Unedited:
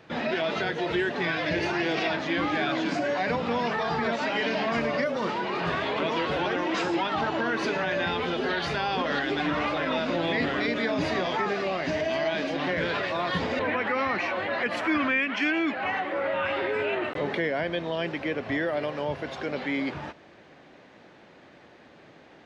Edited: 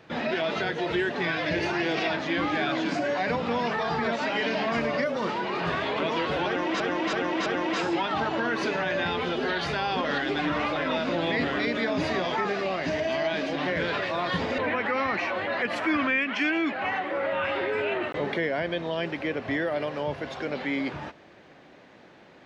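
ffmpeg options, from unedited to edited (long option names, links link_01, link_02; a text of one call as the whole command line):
ffmpeg -i in.wav -filter_complex "[0:a]asplit=4[link_01][link_02][link_03][link_04];[link_01]atrim=end=6.802[link_05];[link_02]atrim=start=6.468:end=6.802[link_06];[link_03]atrim=start=6.468:end=6.802[link_07];[link_04]atrim=start=6.468[link_08];[link_05][link_06]acrossfade=duration=0.004:curve1=hsin:curve2=hsin[link_09];[link_09][link_07]acrossfade=duration=0.004:curve1=hsin:curve2=hsin[link_10];[link_10][link_08]acrossfade=duration=0.004:curve1=hsin:curve2=hsin" out.wav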